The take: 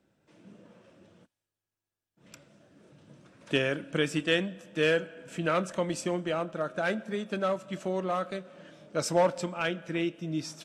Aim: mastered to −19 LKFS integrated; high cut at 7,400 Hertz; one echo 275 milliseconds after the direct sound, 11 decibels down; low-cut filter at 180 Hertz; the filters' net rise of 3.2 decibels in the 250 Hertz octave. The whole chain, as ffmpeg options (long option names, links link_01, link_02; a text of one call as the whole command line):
ffmpeg -i in.wav -af "highpass=180,lowpass=7400,equalizer=frequency=250:width_type=o:gain=6.5,aecho=1:1:275:0.282,volume=10dB" out.wav